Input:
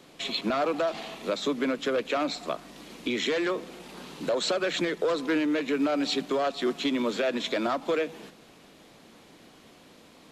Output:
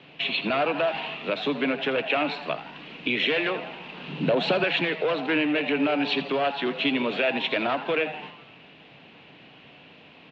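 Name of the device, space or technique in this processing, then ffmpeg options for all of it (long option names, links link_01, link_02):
frequency-shifting delay pedal into a guitar cabinet: -filter_complex "[0:a]asplit=7[link_01][link_02][link_03][link_04][link_05][link_06][link_07];[link_02]adelay=82,afreqshift=140,volume=-13.5dB[link_08];[link_03]adelay=164,afreqshift=280,volume=-18.4dB[link_09];[link_04]adelay=246,afreqshift=420,volume=-23.3dB[link_10];[link_05]adelay=328,afreqshift=560,volume=-28.1dB[link_11];[link_06]adelay=410,afreqshift=700,volume=-33dB[link_12];[link_07]adelay=492,afreqshift=840,volume=-37.9dB[link_13];[link_01][link_08][link_09][link_10][link_11][link_12][link_13]amix=inputs=7:normalize=0,highpass=87,equalizer=frequency=140:width_type=q:width=4:gain=5,equalizer=frequency=220:width_type=q:width=4:gain=-5,equalizer=frequency=350:width_type=q:width=4:gain=-6,equalizer=frequency=530:width_type=q:width=4:gain=-4,equalizer=frequency=1200:width_type=q:width=4:gain=-5,equalizer=frequency=2700:width_type=q:width=4:gain=10,lowpass=frequency=3400:width=0.5412,lowpass=frequency=3400:width=1.3066,asettb=1/sr,asplit=3[link_14][link_15][link_16];[link_14]atrim=end=4.084[link_17];[link_15]atrim=start=4.08:end=4.64,asetpts=PTS-STARTPTS,afade=type=in:duration=0.004:curve=qsin,afade=type=out:start_time=0.556:duration=0.004:curve=qsin,equalizer=frequency=180:width=0.58:gain=10[link_18];[link_16]atrim=start=4.636[link_19];[link_17][link_18]acrossfade=duration=0.004:curve1=hsin:curve2=qsin[link_20];[link_20][link_19]acrossfade=duration=0.004:curve1=qsin:curve2=hsin,volume=4dB"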